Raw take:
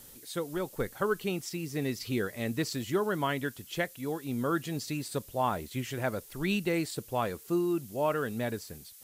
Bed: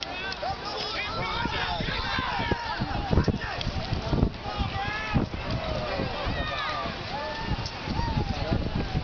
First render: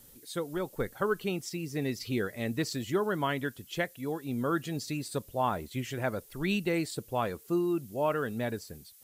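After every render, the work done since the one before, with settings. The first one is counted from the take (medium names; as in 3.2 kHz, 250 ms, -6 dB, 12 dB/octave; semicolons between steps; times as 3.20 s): noise reduction 6 dB, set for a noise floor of -52 dBFS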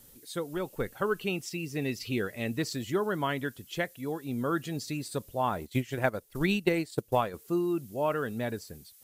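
0.52–2.57 s: peaking EQ 2.7 kHz +7.5 dB 0.26 oct; 5.61–7.34 s: transient shaper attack +8 dB, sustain -9 dB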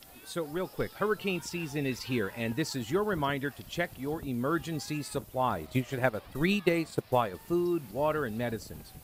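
add bed -22 dB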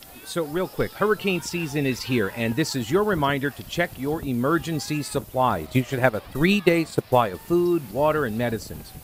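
trim +8 dB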